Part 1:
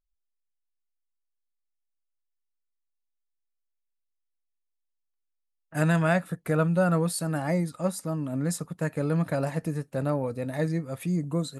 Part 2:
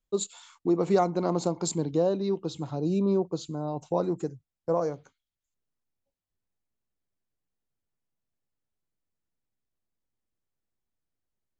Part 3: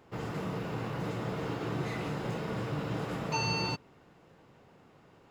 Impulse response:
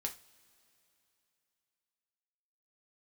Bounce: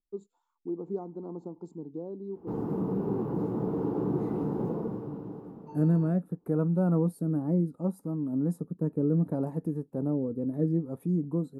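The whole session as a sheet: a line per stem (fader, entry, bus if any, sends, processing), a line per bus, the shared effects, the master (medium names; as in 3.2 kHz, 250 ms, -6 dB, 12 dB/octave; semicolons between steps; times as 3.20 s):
-5.0 dB, 0.00 s, no send, rotary cabinet horn 0.7 Hz
-19.0 dB, 0.00 s, no send, none
-1.0 dB, 2.35 s, no send, auto duck -17 dB, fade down 1.10 s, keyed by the first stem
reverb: none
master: FFT filter 120 Hz 0 dB, 220 Hz +10 dB, 420 Hz +9 dB, 610 Hz -4 dB, 870 Hz +3 dB, 2.1 kHz -22 dB, 3.4 kHz -22 dB, 7.6 kHz -19 dB, 12 kHz -7 dB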